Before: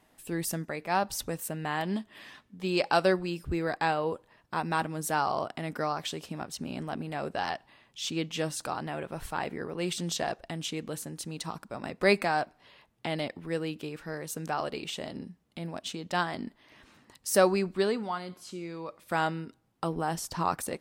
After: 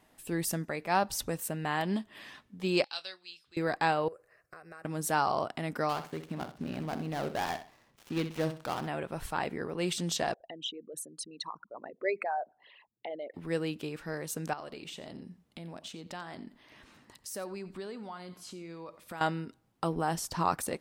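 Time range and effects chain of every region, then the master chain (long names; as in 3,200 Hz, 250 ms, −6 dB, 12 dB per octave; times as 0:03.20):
0:02.84–0:03.57: resonant band-pass 3,900 Hz, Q 3.2 + double-tracking delay 25 ms −13.5 dB
0:04.08–0:04.85: low-shelf EQ 140 Hz −12 dB + downward compressor 5 to 1, threshold −42 dBFS + phaser with its sweep stopped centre 910 Hz, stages 6
0:05.89–0:08.88: gap after every zero crossing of 0.16 ms + high-shelf EQ 5,400 Hz −7 dB + repeating echo 63 ms, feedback 28%, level −10.5 dB
0:10.34–0:13.34: spectral envelope exaggerated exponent 3 + high-pass filter 1,100 Hz 6 dB per octave
0:14.53–0:19.21: downward compressor 3 to 1, threshold −42 dBFS + single-tap delay 89 ms −17 dB
whole clip: no processing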